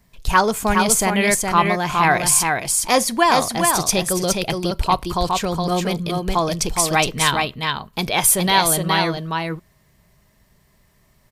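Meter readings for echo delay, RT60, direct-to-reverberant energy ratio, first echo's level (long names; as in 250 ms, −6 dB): 416 ms, no reverb audible, no reverb audible, −4.0 dB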